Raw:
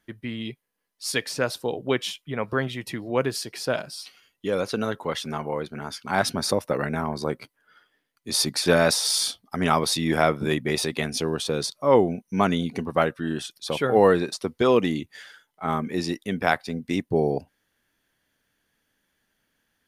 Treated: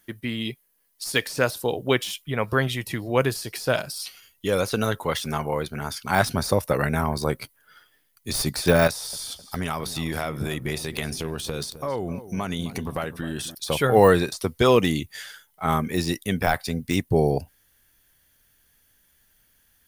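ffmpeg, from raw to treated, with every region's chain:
ffmpeg -i in.wav -filter_complex "[0:a]asettb=1/sr,asplit=3[link_01][link_02][link_03];[link_01]atrim=end=8.874[link_04];[link_02]atrim=start=8.87:end=13.55,asetpts=PTS-STARTPTS,afade=type=in:duration=0.004:curve=qsin,afade=type=out:start_time=4.676:duration=0.004:curve=qsin,acompressor=threshold=-28dB:ratio=4:attack=3.2:release=140:knee=1:detection=peak,asplit=2[link_05][link_06];[link_06]adelay=260,lowpass=frequency=1000:poles=1,volume=-13dB,asplit=2[link_07][link_08];[link_08]adelay=260,lowpass=frequency=1000:poles=1,volume=0.47,asplit=2[link_09][link_10];[link_10]adelay=260,lowpass=frequency=1000:poles=1,volume=0.47,asplit=2[link_11][link_12];[link_12]adelay=260,lowpass=frequency=1000:poles=1,volume=0.47,asplit=2[link_13][link_14];[link_14]adelay=260,lowpass=frequency=1000:poles=1,volume=0.47[link_15];[link_05][link_07][link_09][link_11][link_13][link_15]amix=inputs=6:normalize=0,atrim=end_sample=206388[link_16];[link_03]atrim=start=13.546[link_17];[link_04][link_16]acrossfade=duration=0.004:curve1=hsin:curve2=qsin[link_18];[link_18][link_17]acrossfade=duration=0.004:curve1=qsin:curve2=hsin,aemphasis=mode=production:type=50fm,deesser=0.6,asubboost=boost=4:cutoff=110,volume=3.5dB" out.wav

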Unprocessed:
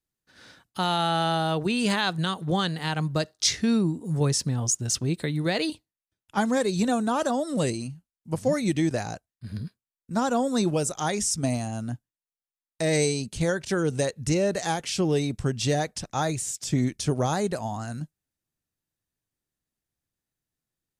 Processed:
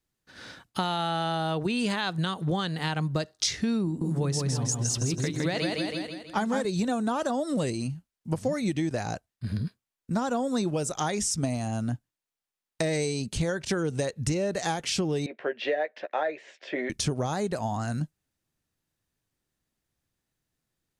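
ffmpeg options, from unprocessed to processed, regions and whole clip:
ffmpeg -i in.wav -filter_complex "[0:a]asettb=1/sr,asplit=3[link_01][link_02][link_03];[link_01]atrim=end=3.854[link_04];[link_02]atrim=start=3.85:end=6.65,asetpts=PTS-STARTPTS,afade=type=in:duration=0.004:curve=qsin,afade=type=out:start_time=2.796:duration=0.004:curve=qsin,bandreject=frequency=50:width_type=h:width=6,bandreject=frequency=100:width_type=h:width=6,bandreject=frequency=150:width_type=h:width=6,bandreject=frequency=200:width_type=h:width=6,bandreject=frequency=250:width_type=h:width=6,bandreject=frequency=300:width_type=h:width=6,bandreject=frequency=350:width_type=h:width=6,bandreject=frequency=400:width_type=h:width=6,aecho=1:1:162|324|486|648|810|972:0.631|0.278|0.122|0.0537|0.0236|0.0104,atrim=end_sample=123480[link_05];[link_03]atrim=start=6.646[link_06];[link_04][link_05]acrossfade=duration=0.004:curve1=hsin:curve2=qsin[link_07];[link_07][link_06]acrossfade=duration=0.004:curve1=qsin:curve2=hsin,asettb=1/sr,asplit=3[link_08][link_09][link_10];[link_08]atrim=end=15.264[link_11];[link_09]atrim=start=15.26:end=16.9,asetpts=PTS-STARTPTS,afade=type=in:duration=0.004:curve=qsin,afade=type=out:start_time=1.636:duration=0.004:curve=qsin,highpass=frequency=410:width=0.5412,highpass=frequency=410:width=1.3066,equalizer=frequency=580:width_type=q:width=4:gain=7,equalizer=frequency=850:width_type=q:width=4:gain=-4,equalizer=frequency=1200:width_type=q:width=4:gain=-8,equalizer=frequency=1800:width_type=q:width=4:gain=6,lowpass=frequency=2700:width=0.5412,lowpass=frequency=2700:width=1.3066,asplit=2[link_12][link_13];[link_13]adelay=13,volume=-8.5dB[link_14];[link_12][link_14]amix=inputs=2:normalize=0,atrim=end_sample=72324[link_15];[link_10]atrim=start=16.896[link_16];[link_11][link_15]acrossfade=duration=0.004:curve1=hsin:curve2=qsin[link_17];[link_17][link_16]acrossfade=duration=0.004:curve1=qsin:curve2=hsin,highshelf=frequency=8100:gain=-6,acompressor=threshold=-32dB:ratio=5,volume=6.5dB" out.wav

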